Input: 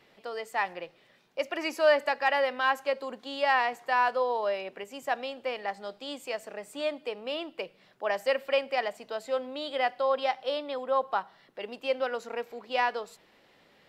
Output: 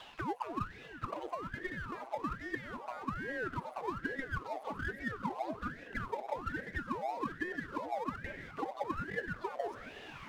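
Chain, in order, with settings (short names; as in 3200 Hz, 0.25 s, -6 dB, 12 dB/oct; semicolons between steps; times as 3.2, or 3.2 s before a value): limiter -20.5 dBFS, peak gain reduction 9.5 dB; reverse; compressor 5:1, threshold -45 dBFS, peak gain reduction 17.5 dB; reverse; auto-wah 370–1600 Hz, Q 8.3, down, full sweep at -41.5 dBFS; power-law curve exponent 0.7; on a send: diffused feedback echo 0.896 s, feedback 47%, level -13 dB; on the sum: speed mistake 33 rpm record played at 45 rpm; ring modulator with a swept carrier 580 Hz, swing 90%, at 1.2 Hz; gain +17.5 dB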